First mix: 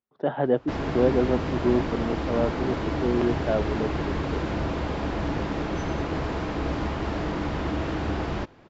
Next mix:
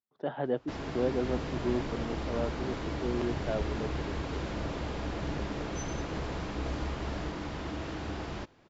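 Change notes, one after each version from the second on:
speech −8.5 dB
first sound −9.5 dB
master: add high-shelf EQ 3,800 Hz +9.5 dB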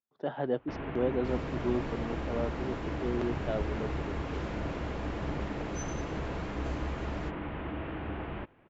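first sound: add Butterworth low-pass 2,900 Hz 36 dB per octave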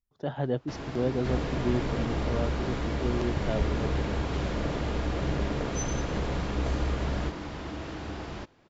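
speech: remove band-pass filter 240–2,900 Hz
first sound: remove Butterworth low-pass 2,900 Hz 36 dB per octave
second sound +8.0 dB

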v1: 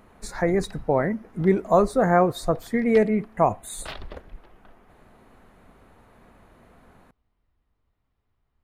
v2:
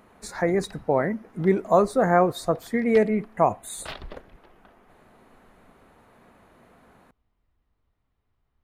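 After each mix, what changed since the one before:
speech: add high-pass filter 140 Hz 6 dB per octave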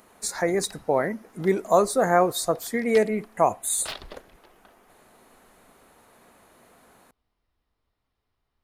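master: add bass and treble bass −6 dB, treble +12 dB

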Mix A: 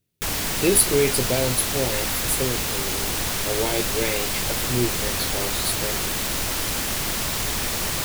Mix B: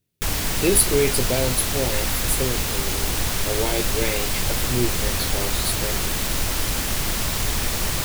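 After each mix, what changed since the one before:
background: add low-shelf EQ 98 Hz +9 dB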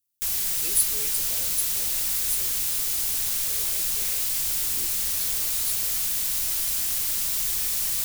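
speech −6.5 dB
master: add first-order pre-emphasis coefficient 0.9

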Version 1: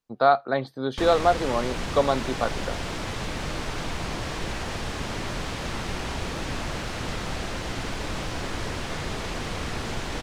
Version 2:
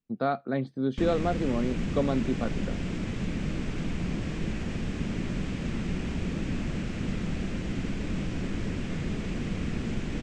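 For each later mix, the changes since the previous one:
master: add drawn EQ curve 120 Hz 0 dB, 190 Hz +8 dB, 900 Hz −14 dB, 2,500 Hz −5 dB, 4,100 Hz −13 dB, 7,800 Hz −9 dB, 11,000 Hz −25 dB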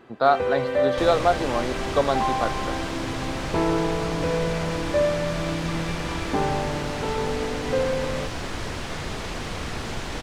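first sound: unmuted
master: remove drawn EQ curve 120 Hz 0 dB, 190 Hz +8 dB, 900 Hz −14 dB, 2,500 Hz −5 dB, 4,100 Hz −13 dB, 7,800 Hz −9 dB, 11,000 Hz −25 dB

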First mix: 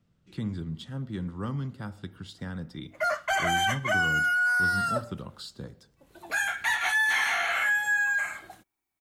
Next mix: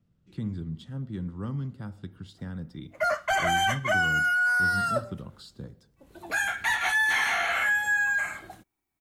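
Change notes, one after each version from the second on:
speech −6.5 dB
master: add low-shelf EQ 440 Hz +7.5 dB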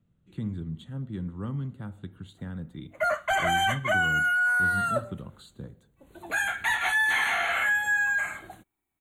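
master: add Butterworth band-reject 5,200 Hz, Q 2.2

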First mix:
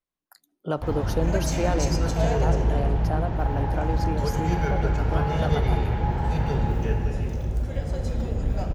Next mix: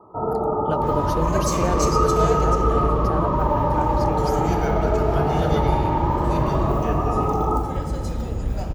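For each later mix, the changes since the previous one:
first sound: unmuted
second sound: add high-shelf EQ 6,500 Hz +10 dB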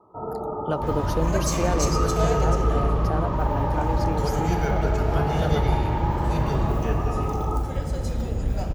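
first sound −7.5 dB

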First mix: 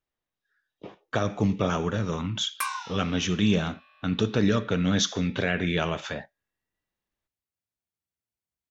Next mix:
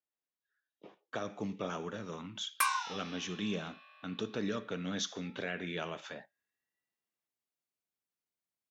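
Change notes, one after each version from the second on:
speech −11.0 dB
master: add high-pass filter 200 Hz 12 dB per octave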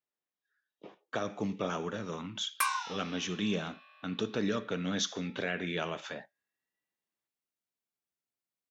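speech +4.0 dB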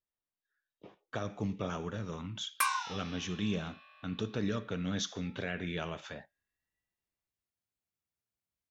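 speech −4.0 dB
master: remove high-pass filter 200 Hz 12 dB per octave

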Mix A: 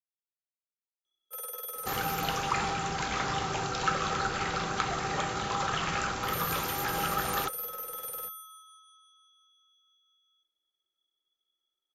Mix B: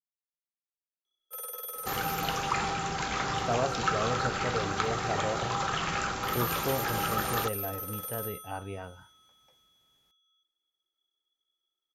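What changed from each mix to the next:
speech: unmuted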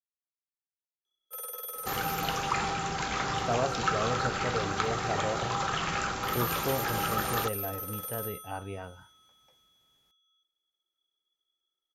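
nothing changed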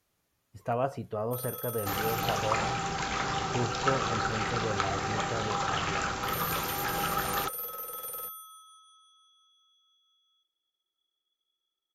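speech: entry −2.80 s

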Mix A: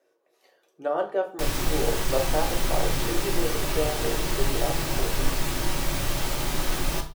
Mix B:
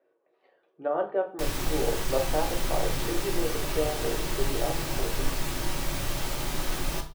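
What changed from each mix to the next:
speech: add high-frequency loss of the air 450 metres
background −3.5 dB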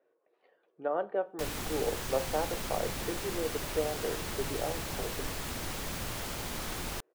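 speech: send −11.5 dB
background: send off

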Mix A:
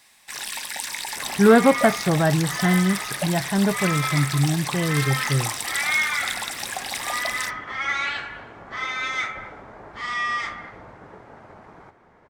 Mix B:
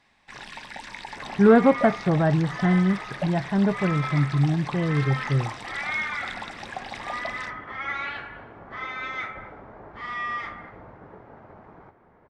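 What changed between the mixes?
first sound: add bass and treble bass +7 dB, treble +1 dB
master: add head-to-tape spacing loss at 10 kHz 30 dB

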